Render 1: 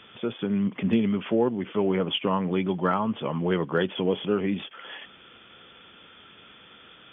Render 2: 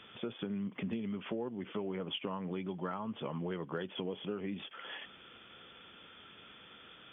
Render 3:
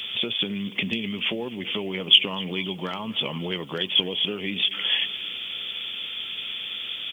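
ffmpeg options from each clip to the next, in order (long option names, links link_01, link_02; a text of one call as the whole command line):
ffmpeg -i in.wav -af "acompressor=threshold=-31dB:ratio=5,volume=-4.5dB" out.wav
ffmpeg -i in.wav -af "aecho=1:1:254|508|762|1016|1270:0.106|0.0604|0.0344|0.0196|0.0112,aexciter=amount=10.2:drive=3.2:freq=2200,volume=7dB" out.wav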